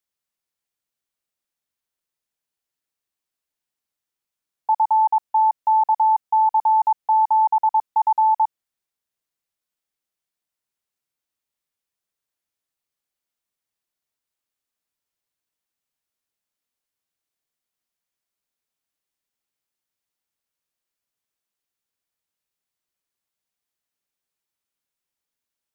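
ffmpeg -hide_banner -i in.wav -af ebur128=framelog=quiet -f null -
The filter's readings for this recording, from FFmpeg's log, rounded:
Integrated loudness:
  I:         -18.9 LUFS
  Threshold: -29.0 LUFS
Loudness range:
  LRA:         9.3 LU
  Threshold: -41.1 LUFS
  LRA low:   -27.8 LUFS
  LRA high:  -18.5 LUFS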